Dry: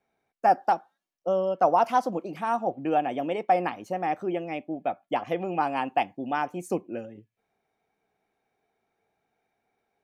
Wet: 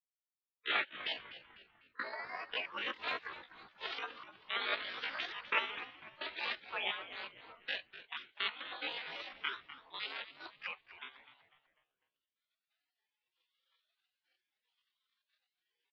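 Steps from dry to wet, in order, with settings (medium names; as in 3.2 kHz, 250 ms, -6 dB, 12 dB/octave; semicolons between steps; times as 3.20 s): sawtooth pitch modulation +12 st, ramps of 841 ms; recorder AGC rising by 20 dB/s; spectral gate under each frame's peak -30 dB weak; gate -53 dBFS, range -14 dB; tempo 0.63×; mistuned SSB -110 Hz 460–3600 Hz; frequency-shifting echo 249 ms, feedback 41%, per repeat -130 Hz, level -14 dB; trim +11.5 dB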